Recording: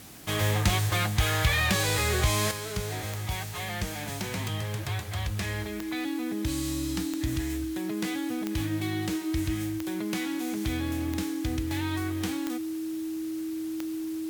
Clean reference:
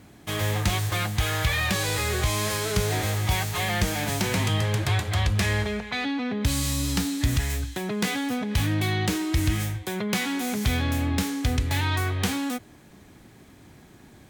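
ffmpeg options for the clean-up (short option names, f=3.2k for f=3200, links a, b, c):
-af "adeclick=t=4,bandreject=f=320:w=30,afwtdn=0.0035,asetnsamples=n=441:p=0,asendcmd='2.51 volume volume 8dB',volume=0dB"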